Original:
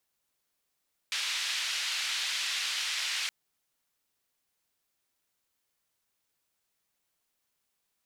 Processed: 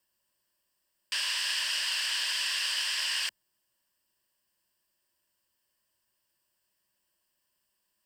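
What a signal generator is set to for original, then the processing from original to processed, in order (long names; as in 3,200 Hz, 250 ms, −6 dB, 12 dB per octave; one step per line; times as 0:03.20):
band-limited noise 2,300–3,800 Hz, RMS −32.5 dBFS 2.17 s
EQ curve with evenly spaced ripples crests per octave 1.3, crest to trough 11 dB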